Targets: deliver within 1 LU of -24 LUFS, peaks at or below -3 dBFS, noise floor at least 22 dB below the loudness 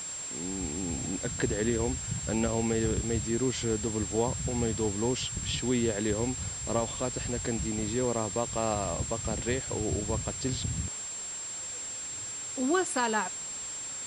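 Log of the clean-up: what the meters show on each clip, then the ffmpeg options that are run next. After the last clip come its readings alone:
steady tone 7500 Hz; tone level -36 dBFS; noise floor -38 dBFS; noise floor target -53 dBFS; loudness -30.5 LUFS; peak -14.5 dBFS; loudness target -24.0 LUFS
-> -af "bandreject=f=7.5k:w=30"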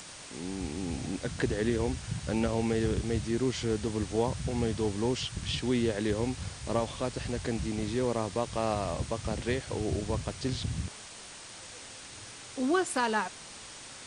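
steady tone none; noise floor -47 dBFS; noise floor target -54 dBFS
-> -af "afftdn=nr=7:nf=-47"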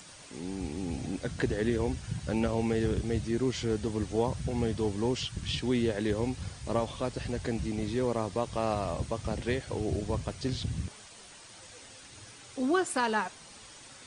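noise floor -51 dBFS; noise floor target -54 dBFS
-> -af "afftdn=nr=6:nf=-51"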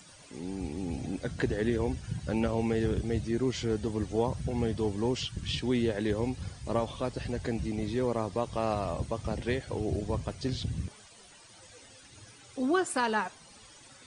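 noise floor -54 dBFS; loudness -32.0 LUFS; peak -15.0 dBFS; loudness target -24.0 LUFS
-> -af "volume=8dB"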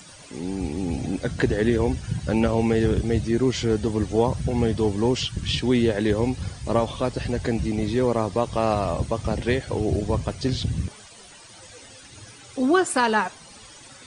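loudness -24.0 LUFS; peak -7.0 dBFS; noise floor -46 dBFS

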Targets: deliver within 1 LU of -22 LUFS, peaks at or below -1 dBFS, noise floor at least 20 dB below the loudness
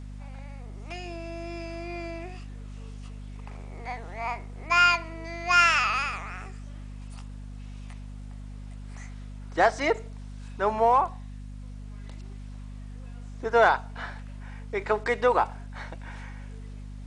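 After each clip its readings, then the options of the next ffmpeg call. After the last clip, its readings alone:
hum 50 Hz; harmonics up to 250 Hz; hum level -37 dBFS; loudness -25.5 LUFS; peak -8.5 dBFS; loudness target -22.0 LUFS
-> -af "bandreject=f=50:t=h:w=6,bandreject=f=100:t=h:w=6,bandreject=f=150:t=h:w=6,bandreject=f=200:t=h:w=6,bandreject=f=250:t=h:w=6"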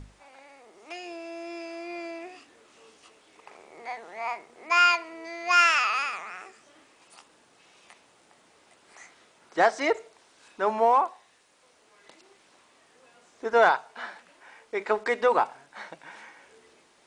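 hum none; loudness -25.0 LUFS; peak -8.5 dBFS; loudness target -22.0 LUFS
-> -af "volume=3dB"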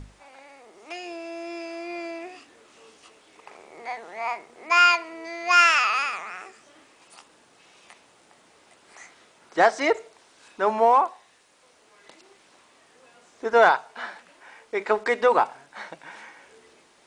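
loudness -22.0 LUFS; peak -5.5 dBFS; noise floor -58 dBFS

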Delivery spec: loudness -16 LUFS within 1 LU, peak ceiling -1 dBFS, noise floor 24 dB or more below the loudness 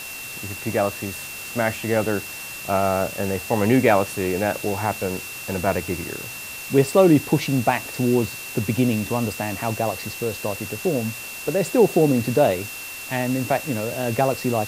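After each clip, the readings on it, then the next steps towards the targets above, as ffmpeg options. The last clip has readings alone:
steady tone 2700 Hz; tone level -35 dBFS; noise floor -35 dBFS; noise floor target -47 dBFS; loudness -22.5 LUFS; peak -3.0 dBFS; loudness target -16.0 LUFS
-> -af "bandreject=f=2.7k:w=30"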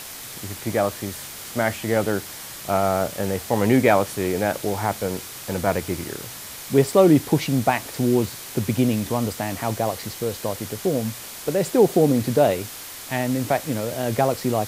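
steady tone none; noise floor -37 dBFS; noise floor target -47 dBFS
-> -af "afftdn=nr=10:nf=-37"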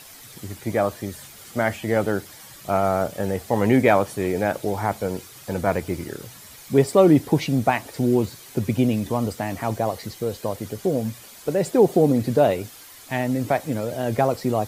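noise floor -45 dBFS; noise floor target -47 dBFS
-> -af "afftdn=nr=6:nf=-45"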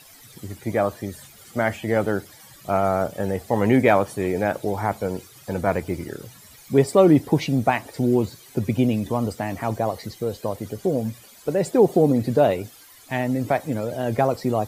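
noise floor -48 dBFS; loudness -22.5 LUFS; peak -3.0 dBFS; loudness target -16.0 LUFS
-> -af "volume=6.5dB,alimiter=limit=-1dB:level=0:latency=1"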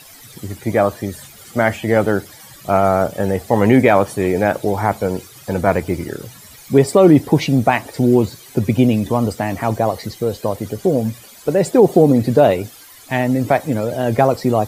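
loudness -16.5 LUFS; peak -1.0 dBFS; noise floor -42 dBFS

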